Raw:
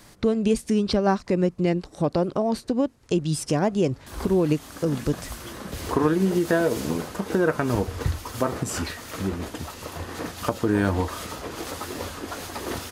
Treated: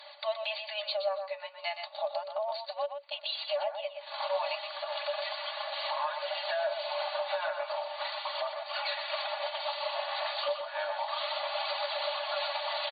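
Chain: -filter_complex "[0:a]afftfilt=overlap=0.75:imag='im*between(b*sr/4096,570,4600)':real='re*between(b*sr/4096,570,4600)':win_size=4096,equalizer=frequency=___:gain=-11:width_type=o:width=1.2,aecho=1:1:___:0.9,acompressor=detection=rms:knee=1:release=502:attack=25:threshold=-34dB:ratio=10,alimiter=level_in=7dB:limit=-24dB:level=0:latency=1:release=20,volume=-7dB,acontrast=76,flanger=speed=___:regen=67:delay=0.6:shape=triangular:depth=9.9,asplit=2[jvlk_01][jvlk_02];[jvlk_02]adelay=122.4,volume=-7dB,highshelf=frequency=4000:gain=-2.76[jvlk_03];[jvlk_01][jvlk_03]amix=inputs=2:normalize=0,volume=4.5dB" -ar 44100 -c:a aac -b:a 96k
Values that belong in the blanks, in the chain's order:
1500, 3.5, 0.34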